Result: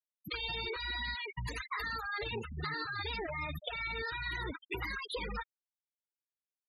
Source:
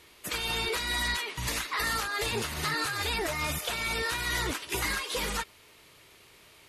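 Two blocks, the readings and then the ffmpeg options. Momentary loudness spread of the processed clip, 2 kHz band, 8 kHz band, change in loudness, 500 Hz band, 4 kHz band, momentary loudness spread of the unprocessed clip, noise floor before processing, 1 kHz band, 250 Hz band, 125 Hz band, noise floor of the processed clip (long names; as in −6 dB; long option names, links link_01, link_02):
4 LU, −6.5 dB, −26.0 dB, −8.0 dB, −6.5 dB, −9.0 dB, 3 LU, −57 dBFS, −7.0 dB, −7.5 dB, −5.0 dB, below −85 dBFS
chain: -af "afftfilt=real='re*gte(hypot(re,im),0.0501)':imag='im*gte(hypot(re,im),0.0501)':win_size=1024:overlap=0.75,acompressor=threshold=-35dB:ratio=6"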